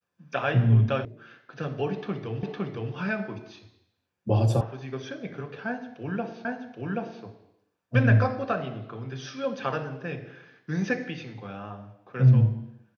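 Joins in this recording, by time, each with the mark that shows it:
1.05 sound cut off
2.43 repeat of the last 0.51 s
4.61 sound cut off
6.45 repeat of the last 0.78 s

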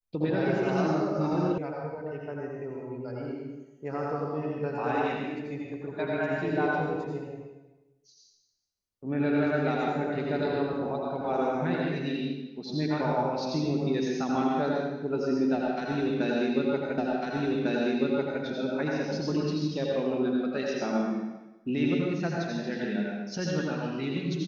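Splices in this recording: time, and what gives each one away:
1.58 sound cut off
16.98 repeat of the last 1.45 s

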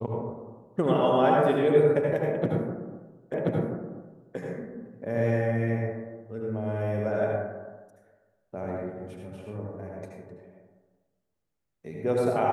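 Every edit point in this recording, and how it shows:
3.34 repeat of the last 1.03 s

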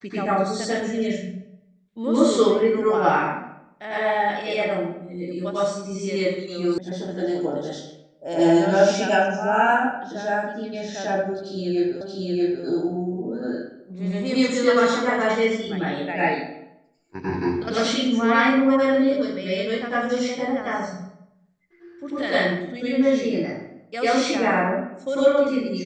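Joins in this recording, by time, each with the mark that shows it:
6.78 sound cut off
12.01 repeat of the last 0.63 s

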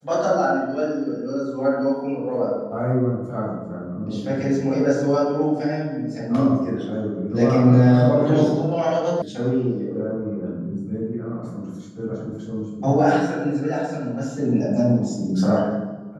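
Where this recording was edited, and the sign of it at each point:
9.22 sound cut off

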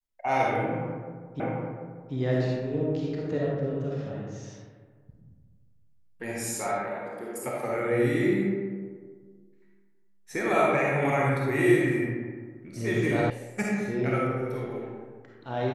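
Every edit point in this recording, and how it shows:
1.4 repeat of the last 0.74 s
13.3 sound cut off

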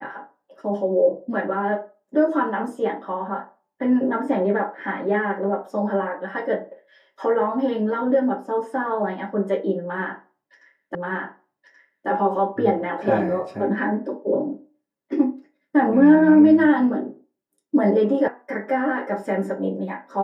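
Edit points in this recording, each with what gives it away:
10.95 repeat of the last 1.13 s
18.28 sound cut off

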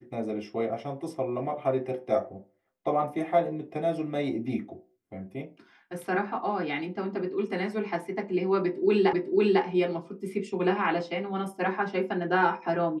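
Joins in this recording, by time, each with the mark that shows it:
9.13 repeat of the last 0.5 s

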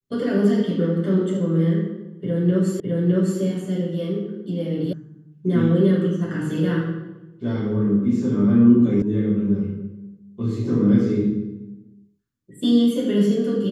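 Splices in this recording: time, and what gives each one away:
2.8 repeat of the last 0.61 s
4.93 sound cut off
9.02 sound cut off

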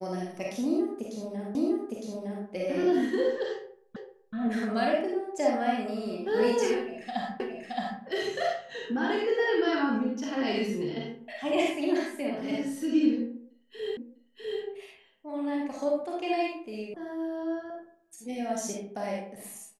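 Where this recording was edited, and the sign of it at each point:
1.55 repeat of the last 0.91 s
3.96 repeat of the last 0.38 s
7.4 repeat of the last 0.62 s
13.97 repeat of the last 0.65 s
16.94 sound cut off

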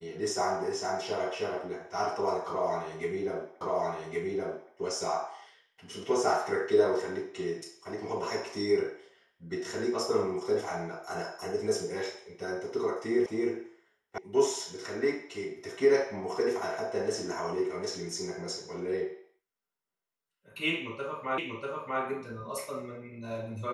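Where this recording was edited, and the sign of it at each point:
3.61 repeat of the last 1.12 s
13.26 sound cut off
14.18 sound cut off
21.38 repeat of the last 0.64 s

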